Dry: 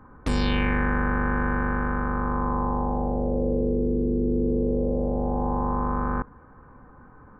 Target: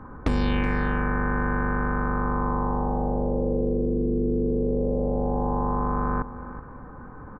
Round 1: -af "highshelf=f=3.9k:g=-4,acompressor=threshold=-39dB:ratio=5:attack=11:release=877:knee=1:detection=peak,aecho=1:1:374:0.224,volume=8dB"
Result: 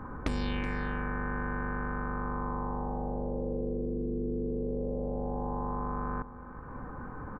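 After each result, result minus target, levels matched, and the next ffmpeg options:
compressor: peak gain reduction +9.5 dB; 4000 Hz band +4.0 dB
-af "highshelf=f=3.9k:g=-4,acompressor=threshold=-28dB:ratio=5:attack=11:release=877:knee=1:detection=peak,aecho=1:1:374:0.224,volume=8dB"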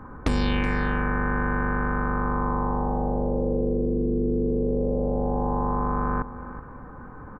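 4000 Hz band +3.5 dB
-af "highshelf=f=3.9k:g=-13.5,acompressor=threshold=-28dB:ratio=5:attack=11:release=877:knee=1:detection=peak,aecho=1:1:374:0.224,volume=8dB"

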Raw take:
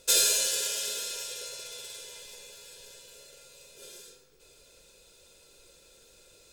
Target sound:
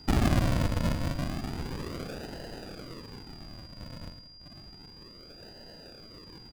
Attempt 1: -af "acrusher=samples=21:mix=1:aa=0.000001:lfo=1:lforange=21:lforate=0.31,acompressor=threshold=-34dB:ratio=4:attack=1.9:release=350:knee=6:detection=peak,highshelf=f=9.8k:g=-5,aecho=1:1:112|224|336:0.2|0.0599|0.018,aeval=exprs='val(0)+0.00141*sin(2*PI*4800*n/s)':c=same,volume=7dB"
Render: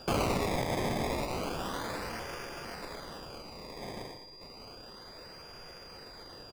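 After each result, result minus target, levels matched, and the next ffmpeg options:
decimation with a swept rate: distortion -21 dB; compressor: peak gain reduction +5 dB
-af "acrusher=samples=75:mix=1:aa=0.000001:lfo=1:lforange=75:lforate=0.31,acompressor=threshold=-34dB:ratio=4:attack=1.9:release=350:knee=6:detection=peak,highshelf=f=9.8k:g=-5,aecho=1:1:112|224|336:0.2|0.0599|0.018,aeval=exprs='val(0)+0.00141*sin(2*PI*4800*n/s)':c=same,volume=7dB"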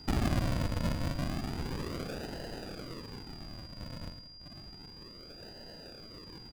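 compressor: peak gain reduction +5 dB
-af "acrusher=samples=75:mix=1:aa=0.000001:lfo=1:lforange=75:lforate=0.31,acompressor=threshold=-27dB:ratio=4:attack=1.9:release=350:knee=6:detection=peak,highshelf=f=9.8k:g=-5,aecho=1:1:112|224|336:0.2|0.0599|0.018,aeval=exprs='val(0)+0.00141*sin(2*PI*4800*n/s)':c=same,volume=7dB"

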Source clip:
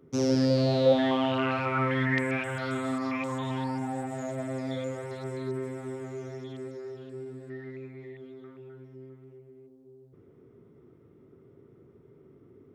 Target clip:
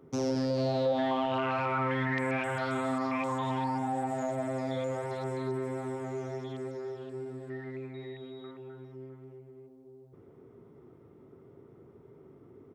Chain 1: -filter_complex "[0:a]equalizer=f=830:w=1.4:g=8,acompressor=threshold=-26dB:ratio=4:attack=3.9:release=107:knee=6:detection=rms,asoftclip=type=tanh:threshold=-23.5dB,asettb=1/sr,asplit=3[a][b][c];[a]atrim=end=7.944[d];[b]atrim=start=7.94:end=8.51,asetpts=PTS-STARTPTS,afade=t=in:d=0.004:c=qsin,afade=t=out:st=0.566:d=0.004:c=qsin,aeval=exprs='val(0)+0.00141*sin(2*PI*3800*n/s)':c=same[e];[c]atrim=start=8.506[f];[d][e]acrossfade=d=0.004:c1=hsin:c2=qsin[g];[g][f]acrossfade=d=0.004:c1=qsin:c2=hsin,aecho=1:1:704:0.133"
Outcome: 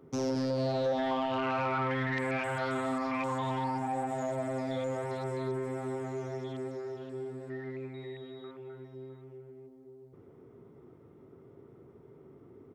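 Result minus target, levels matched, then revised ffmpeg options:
echo 0.299 s late; soft clip: distortion +12 dB
-filter_complex "[0:a]equalizer=f=830:w=1.4:g=8,acompressor=threshold=-26dB:ratio=4:attack=3.9:release=107:knee=6:detection=rms,asoftclip=type=tanh:threshold=-16.5dB,asettb=1/sr,asplit=3[a][b][c];[a]atrim=end=7.944[d];[b]atrim=start=7.94:end=8.51,asetpts=PTS-STARTPTS,afade=t=in:d=0.004:c=qsin,afade=t=out:st=0.566:d=0.004:c=qsin,aeval=exprs='val(0)+0.00141*sin(2*PI*3800*n/s)':c=same[e];[c]atrim=start=8.506[f];[d][e]acrossfade=d=0.004:c1=hsin:c2=qsin[g];[g][f]acrossfade=d=0.004:c1=qsin:c2=hsin,aecho=1:1:405:0.133"

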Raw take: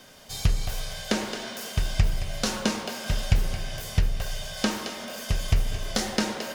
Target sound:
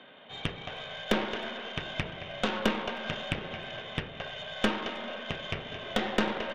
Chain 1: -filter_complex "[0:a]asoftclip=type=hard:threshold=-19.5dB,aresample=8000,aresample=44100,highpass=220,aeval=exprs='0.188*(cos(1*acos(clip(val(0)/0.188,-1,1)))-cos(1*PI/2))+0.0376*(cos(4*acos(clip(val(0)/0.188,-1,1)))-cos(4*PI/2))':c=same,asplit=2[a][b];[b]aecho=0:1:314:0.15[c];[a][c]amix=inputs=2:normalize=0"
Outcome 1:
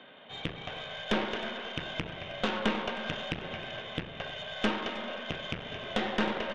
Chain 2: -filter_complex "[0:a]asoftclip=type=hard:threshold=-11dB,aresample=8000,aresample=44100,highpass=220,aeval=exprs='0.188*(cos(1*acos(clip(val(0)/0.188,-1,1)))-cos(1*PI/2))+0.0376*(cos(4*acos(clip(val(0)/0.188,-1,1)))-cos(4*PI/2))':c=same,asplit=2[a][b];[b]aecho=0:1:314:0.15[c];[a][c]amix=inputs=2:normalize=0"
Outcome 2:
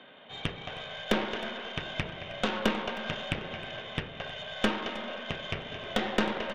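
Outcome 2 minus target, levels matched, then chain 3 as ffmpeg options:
echo-to-direct +8.5 dB
-filter_complex "[0:a]asoftclip=type=hard:threshold=-11dB,aresample=8000,aresample=44100,highpass=220,aeval=exprs='0.188*(cos(1*acos(clip(val(0)/0.188,-1,1)))-cos(1*PI/2))+0.0376*(cos(4*acos(clip(val(0)/0.188,-1,1)))-cos(4*PI/2))':c=same,asplit=2[a][b];[b]aecho=0:1:314:0.0562[c];[a][c]amix=inputs=2:normalize=0"

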